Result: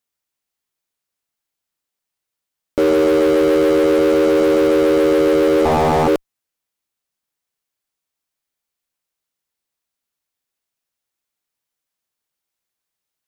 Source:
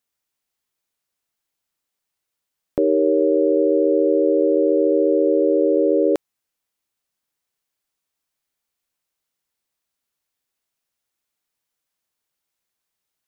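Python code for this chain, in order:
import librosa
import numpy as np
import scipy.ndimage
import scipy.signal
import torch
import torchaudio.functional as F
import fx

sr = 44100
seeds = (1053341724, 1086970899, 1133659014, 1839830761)

p1 = fx.fuzz(x, sr, gain_db=34.0, gate_db=-39.0)
p2 = x + (p1 * 10.0 ** (-5.0 / 20.0))
p3 = fx.doppler_dist(p2, sr, depth_ms=0.81, at=(5.65, 6.08))
y = p3 * 10.0 ** (-1.5 / 20.0)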